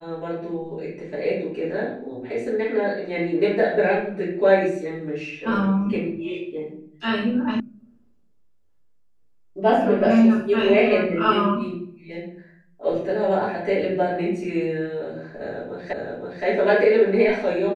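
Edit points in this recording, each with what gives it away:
0:07.60: cut off before it has died away
0:15.93: the same again, the last 0.52 s

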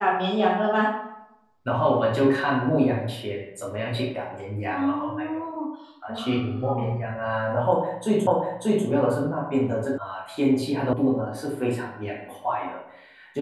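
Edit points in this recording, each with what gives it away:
0:08.27: the same again, the last 0.59 s
0:09.98: cut off before it has died away
0:10.93: cut off before it has died away

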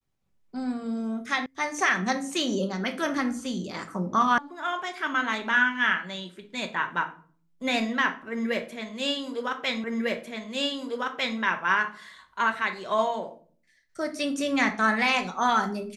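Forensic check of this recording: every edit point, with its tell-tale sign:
0:01.46: cut off before it has died away
0:04.38: cut off before it has died away
0:09.84: the same again, the last 1.55 s

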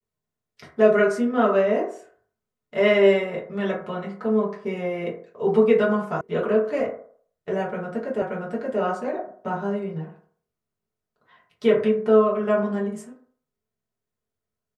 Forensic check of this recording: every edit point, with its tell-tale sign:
0:06.21: cut off before it has died away
0:08.22: the same again, the last 0.58 s

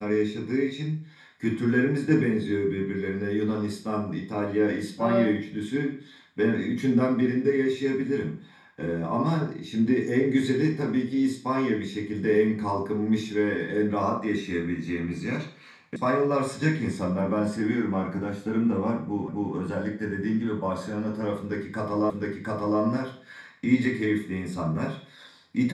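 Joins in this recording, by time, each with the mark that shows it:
0:15.96: cut off before it has died away
0:19.28: the same again, the last 0.26 s
0:22.10: the same again, the last 0.71 s

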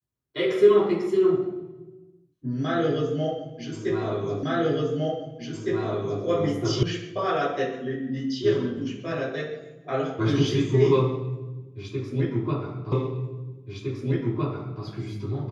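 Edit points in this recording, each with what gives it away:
0:04.43: the same again, the last 1.81 s
0:06.83: cut off before it has died away
0:12.92: the same again, the last 1.91 s

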